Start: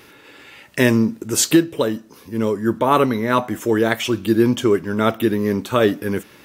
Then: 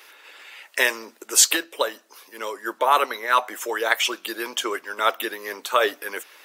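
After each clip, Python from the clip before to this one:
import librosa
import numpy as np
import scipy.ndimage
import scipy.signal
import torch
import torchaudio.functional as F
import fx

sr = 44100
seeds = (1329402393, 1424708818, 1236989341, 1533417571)

y = scipy.signal.sosfilt(scipy.signal.bessel(4, 730.0, 'highpass', norm='mag', fs=sr, output='sos'), x)
y = fx.hpss(y, sr, part='percussive', gain_db=8)
y = y * 10.0 ** (-4.5 / 20.0)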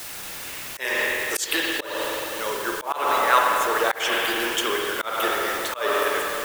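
y = fx.quant_dither(x, sr, seeds[0], bits=6, dither='triangular')
y = fx.rev_spring(y, sr, rt60_s=3.0, pass_ms=(46, 51), chirp_ms=75, drr_db=-1.0)
y = fx.auto_swell(y, sr, attack_ms=226.0)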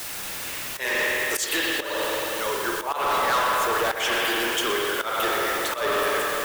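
y = 10.0 ** (-21.5 / 20.0) * np.tanh(x / 10.0 ** (-21.5 / 20.0))
y = y + 10.0 ** (-13.0 / 20.0) * np.pad(y, (int(122 * sr / 1000.0), 0))[:len(y)]
y = y * 10.0 ** (2.5 / 20.0)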